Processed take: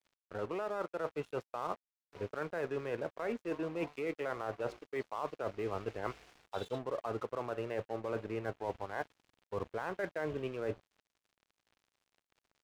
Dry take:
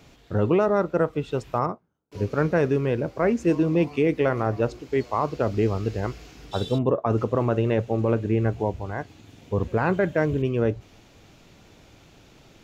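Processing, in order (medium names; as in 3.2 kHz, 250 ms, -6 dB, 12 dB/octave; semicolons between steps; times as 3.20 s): three-band isolator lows -15 dB, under 460 Hz, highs -14 dB, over 2.9 kHz; peak limiter -18.5 dBFS, peak gain reduction 5.5 dB; reverse; compression 16:1, threshold -34 dBFS, peak gain reduction 12 dB; reverse; crossover distortion -51.5 dBFS; trim +2 dB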